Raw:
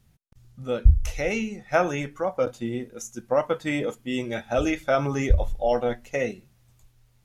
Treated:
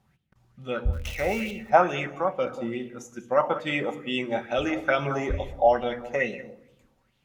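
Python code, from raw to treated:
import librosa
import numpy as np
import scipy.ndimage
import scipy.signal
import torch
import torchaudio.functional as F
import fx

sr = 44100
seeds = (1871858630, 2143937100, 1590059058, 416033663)

y = fx.crossing_spikes(x, sr, level_db=-25.5, at=(0.93, 1.51))
y = fx.highpass(y, sr, hz=120.0, slope=6)
y = fx.high_shelf(y, sr, hz=4500.0, db=-10.0)
y = y + 10.0 ** (-17.5 / 20.0) * np.pad(y, (int(189 * sr / 1000.0), 0))[:len(y)]
y = fx.room_shoebox(y, sr, seeds[0], volume_m3=3700.0, walls='furnished', distance_m=1.1)
y = fx.bell_lfo(y, sr, hz=2.3, low_hz=770.0, high_hz=3300.0, db=13)
y = y * librosa.db_to_amplitude(-2.5)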